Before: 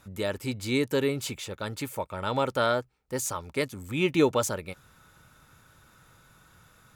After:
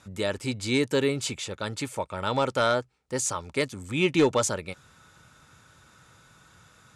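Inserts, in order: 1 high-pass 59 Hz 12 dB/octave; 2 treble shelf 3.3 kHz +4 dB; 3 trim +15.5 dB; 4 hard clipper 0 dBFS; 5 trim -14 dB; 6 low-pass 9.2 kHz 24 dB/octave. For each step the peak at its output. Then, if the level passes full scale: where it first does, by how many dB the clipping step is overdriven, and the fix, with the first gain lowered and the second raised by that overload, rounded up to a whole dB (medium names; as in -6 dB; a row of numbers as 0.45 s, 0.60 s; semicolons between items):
-10.5 dBFS, -10.0 dBFS, +5.5 dBFS, 0.0 dBFS, -14.0 dBFS, -13.5 dBFS; step 3, 5.5 dB; step 3 +9.5 dB, step 5 -8 dB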